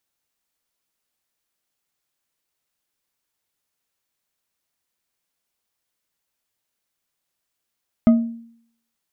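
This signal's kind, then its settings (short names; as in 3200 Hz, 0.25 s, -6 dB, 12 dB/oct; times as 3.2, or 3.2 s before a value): glass hit bar, lowest mode 231 Hz, decay 0.64 s, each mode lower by 11 dB, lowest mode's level -7 dB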